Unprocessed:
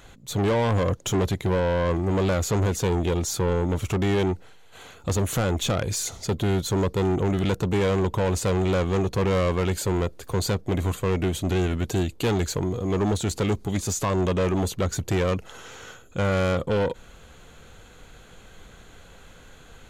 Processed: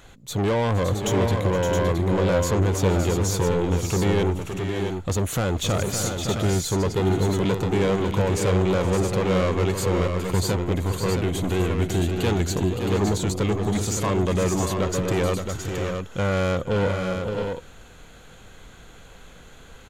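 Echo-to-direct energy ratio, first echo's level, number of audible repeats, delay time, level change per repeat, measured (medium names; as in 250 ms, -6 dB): -3.0 dB, -16.5 dB, 4, 468 ms, no regular repeats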